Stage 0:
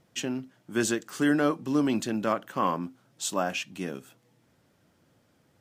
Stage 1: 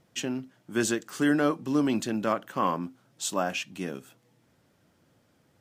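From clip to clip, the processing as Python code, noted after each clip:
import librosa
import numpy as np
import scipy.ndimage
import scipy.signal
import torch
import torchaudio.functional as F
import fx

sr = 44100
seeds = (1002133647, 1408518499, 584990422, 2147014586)

y = x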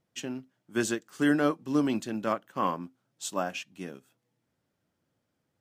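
y = fx.upward_expand(x, sr, threshold_db=-47.0, expansion=1.5)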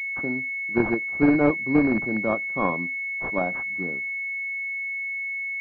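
y = fx.rattle_buzz(x, sr, strikes_db=-32.0, level_db=-18.0)
y = fx.pwm(y, sr, carrier_hz=2200.0)
y = y * 10.0 ** (6.0 / 20.0)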